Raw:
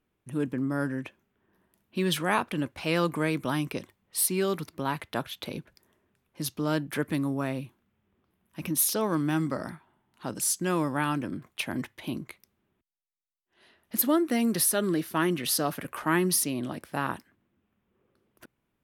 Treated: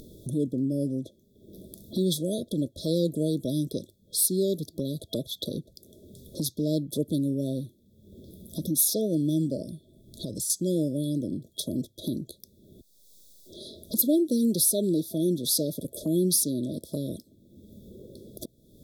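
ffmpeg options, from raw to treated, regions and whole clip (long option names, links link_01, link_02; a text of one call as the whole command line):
ffmpeg -i in.wav -filter_complex "[0:a]asettb=1/sr,asplit=3[link_01][link_02][link_03];[link_01]atrim=end=9.624[link_04];[link_02]atrim=start=9.62:end=10.5,asetpts=PTS-STARTPTS,afade=type=in:duration=0.004:curve=qsin,afade=type=out:start_time=0.876:duration=0.004:curve=qsin,asubboost=boost=10:cutoff=110,acompressor=threshold=-40dB:ratio=2:attack=3.2:release=140:knee=1:detection=peak[link_05];[link_03]atrim=start=10.496[link_06];[link_04][link_05]acrossfade=duration=0.004:curve1=hsin:curve2=qsin[link_07];[link_07][link_06]acrossfade=duration=0.004:curve1=qsin:curve2=hsin,afftfilt=real='re*(1-between(b*sr/4096,660,3300))':imag='im*(1-between(b*sr/4096,660,3300))':win_size=4096:overlap=0.75,equalizer=frequency=680:width_type=o:width=0.28:gain=-4.5,acompressor=mode=upward:threshold=-28dB:ratio=2.5,volume=2dB" out.wav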